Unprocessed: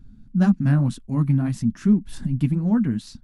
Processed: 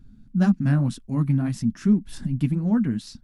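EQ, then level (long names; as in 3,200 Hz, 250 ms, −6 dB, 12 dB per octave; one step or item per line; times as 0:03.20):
low-shelf EQ 170 Hz −3.5 dB
dynamic equaliser 5,300 Hz, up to +4 dB, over −60 dBFS, Q 6.8
parametric band 960 Hz −2 dB
0.0 dB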